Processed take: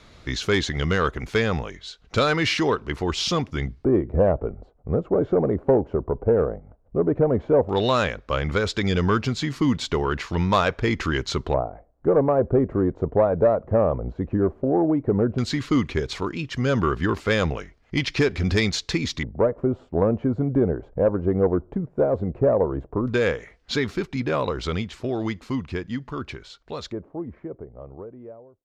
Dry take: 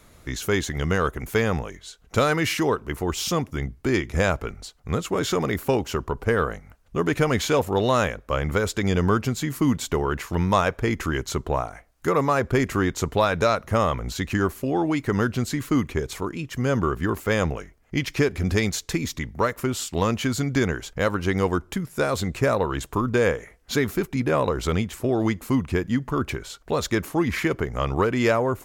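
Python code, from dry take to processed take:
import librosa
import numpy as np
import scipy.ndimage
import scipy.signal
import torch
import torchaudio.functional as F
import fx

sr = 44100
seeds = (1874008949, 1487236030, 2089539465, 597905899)

p1 = fx.fade_out_tail(x, sr, length_s=7.86)
p2 = fx.rider(p1, sr, range_db=4, speed_s=2.0)
p3 = p1 + (p2 * librosa.db_to_amplitude(0.0))
p4 = fx.filter_lfo_lowpass(p3, sr, shape='square', hz=0.13, low_hz=600.0, high_hz=4400.0, q=1.7)
p5 = fx.cheby_harmonics(p4, sr, harmonics=(2, 5, 7), levels_db=(-17, -22, -35), full_scale_db=1.0)
y = p5 * librosa.db_to_amplitude(-7.0)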